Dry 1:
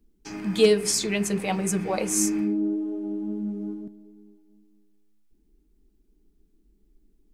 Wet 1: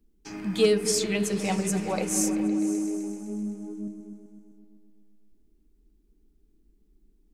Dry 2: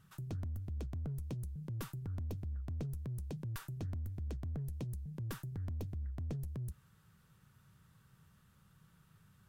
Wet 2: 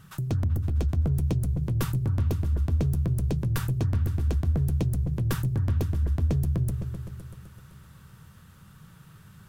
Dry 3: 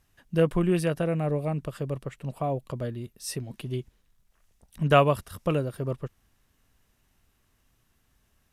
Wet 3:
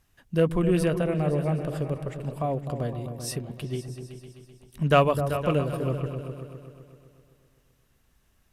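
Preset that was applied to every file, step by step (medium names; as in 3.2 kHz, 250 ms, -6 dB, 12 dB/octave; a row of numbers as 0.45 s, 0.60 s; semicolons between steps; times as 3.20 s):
in parallel at -11.5 dB: hard clipper -17.5 dBFS; on the sum: delay with an opening low-pass 128 ms, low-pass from 200 Hz, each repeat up 2 oct, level -6 dB; normalise loudness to -27 LUFS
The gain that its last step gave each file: -4.5 dB, +11.5 dB, -1.5 dB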